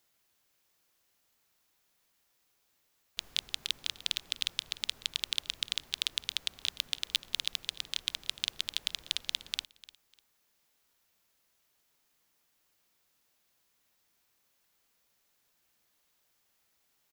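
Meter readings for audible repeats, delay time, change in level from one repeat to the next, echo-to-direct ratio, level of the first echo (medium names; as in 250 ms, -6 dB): 2, 299 ms, -12.0 dB, -19.0 dB, -19.0 dB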